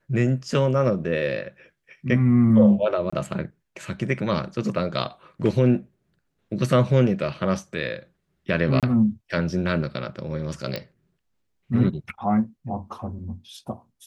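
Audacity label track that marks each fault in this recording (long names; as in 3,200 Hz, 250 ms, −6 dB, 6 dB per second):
3.100000	3.120000	drop-out 25 ms
8.800000	8.830000	drop-out 27 ms
10.760000	10.760000	click −16 dBFS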